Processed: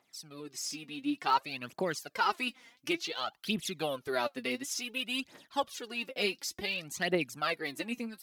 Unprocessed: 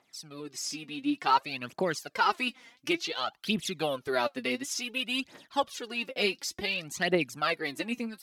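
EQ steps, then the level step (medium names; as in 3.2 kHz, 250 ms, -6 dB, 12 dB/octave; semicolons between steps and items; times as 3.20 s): treble shelf 12 kHz +8.5 dB; -3.5 dB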